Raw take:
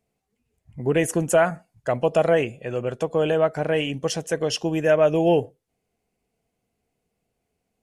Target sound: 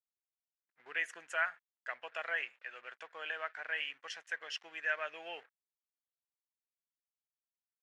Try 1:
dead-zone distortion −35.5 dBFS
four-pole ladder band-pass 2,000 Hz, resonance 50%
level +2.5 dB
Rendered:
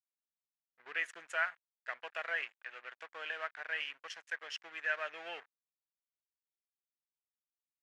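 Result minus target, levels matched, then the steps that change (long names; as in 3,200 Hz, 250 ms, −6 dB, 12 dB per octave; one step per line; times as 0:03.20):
dead-zone distortion: distortion +10 dB
change: dead-zone distortion −46 dBFS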